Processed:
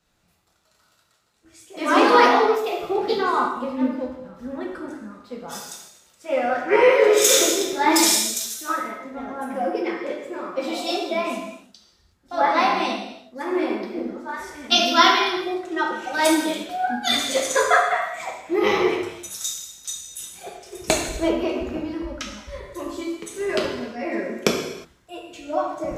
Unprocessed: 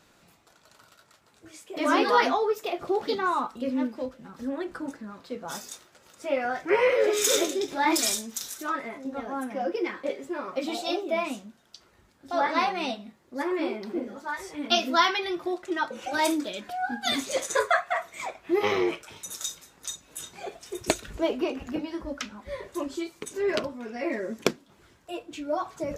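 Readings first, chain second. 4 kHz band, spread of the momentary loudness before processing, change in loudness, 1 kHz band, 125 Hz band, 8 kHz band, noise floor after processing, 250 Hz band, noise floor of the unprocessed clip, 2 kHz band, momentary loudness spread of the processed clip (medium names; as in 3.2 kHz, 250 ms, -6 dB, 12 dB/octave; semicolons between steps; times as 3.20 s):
+7.5 dB, 15 LU, +7.0 dB, +6.5 dB, +6.0 dB, +8.0 dB, -63 dBFS, +5.0 dB, -61 dBFS, +6.0 dB, 19 LU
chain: gated-style reverb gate 390 ms falling, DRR -1 dB; three bands expanded up and down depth 40%; trim +2 dB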